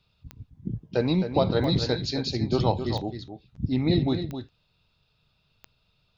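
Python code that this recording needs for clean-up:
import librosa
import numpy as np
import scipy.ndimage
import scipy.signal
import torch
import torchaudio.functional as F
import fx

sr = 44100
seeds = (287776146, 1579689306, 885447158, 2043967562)

y = fx.fix_declick_ar(x, sr, threshold=10.0)
y = fx.fix_echo_inverse(y, sr, delay_ms=264, level_db=-9.0)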